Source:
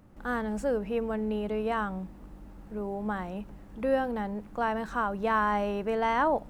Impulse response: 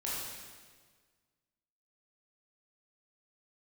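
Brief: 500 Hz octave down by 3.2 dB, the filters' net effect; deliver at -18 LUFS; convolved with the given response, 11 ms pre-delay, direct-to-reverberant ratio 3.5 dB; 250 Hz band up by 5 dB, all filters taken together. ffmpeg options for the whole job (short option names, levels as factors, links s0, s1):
-filter_complex "[0:a]equalizer=f=250:t=o:g=7,equalizer=f=500:t=o:g=-5.5,asplit=2[s0][s1];[1:a]atrim=start_sample=2205,adelay=11[s2];[s1][s2]afir=irnorm=-1:irlink=0,volume=0.422[s3];[s0][s3]amix=inputs=2:normalize=0,volume=3.16"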